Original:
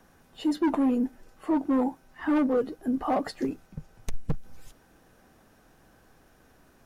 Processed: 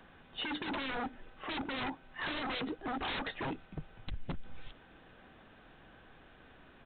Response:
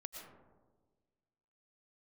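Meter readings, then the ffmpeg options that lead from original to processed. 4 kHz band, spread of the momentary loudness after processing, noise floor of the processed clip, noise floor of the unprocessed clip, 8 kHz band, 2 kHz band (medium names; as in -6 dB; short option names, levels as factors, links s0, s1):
+6.5 dB, 22 LU, -59 dBFS, -60 dBFS, no reading, +3.5 dB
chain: -af "highshelf=f=2100:g=10.5,aresample=8000,aeval=exprs='0.0266*(abs(mod(val(0)/0.0266+3,4)-2)-1)':c=same,aresample=44100"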